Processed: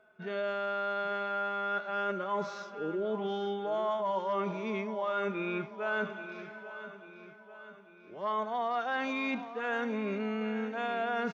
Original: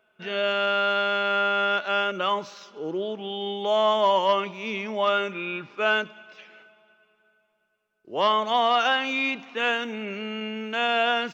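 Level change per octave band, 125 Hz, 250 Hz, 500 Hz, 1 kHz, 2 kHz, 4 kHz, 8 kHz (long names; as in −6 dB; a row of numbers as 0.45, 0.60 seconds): −1.5 dB, −2.5 dB, −7.5 dB, −9.5 dB, −9.5 dB, −18.5 dB, can't be measured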